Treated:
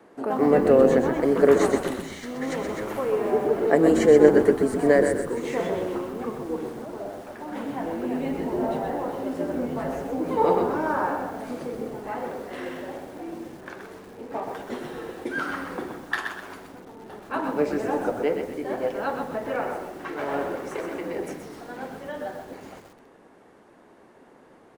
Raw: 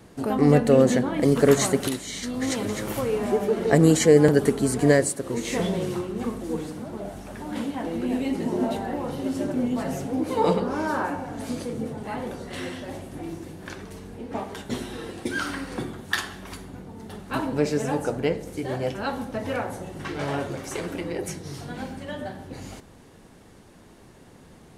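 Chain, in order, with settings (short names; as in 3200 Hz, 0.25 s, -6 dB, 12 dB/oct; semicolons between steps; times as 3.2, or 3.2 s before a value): three-band isolator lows -24 dB, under 260 Hz, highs -14 dB, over 2100 Hz; frequency-shifting echo 0.12 s, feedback 35%, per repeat -95 Hz, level -10.5 dB; lo-fi delay 0.128 s, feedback 35%, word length 8-bit, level -7 dB; gain +1.5 dB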